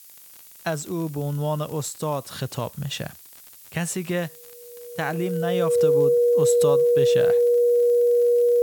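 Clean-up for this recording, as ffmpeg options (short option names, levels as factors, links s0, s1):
-af "adeclick=t=4,bandreject=f=480:w=30,afftdn=nr=21:nf=-47"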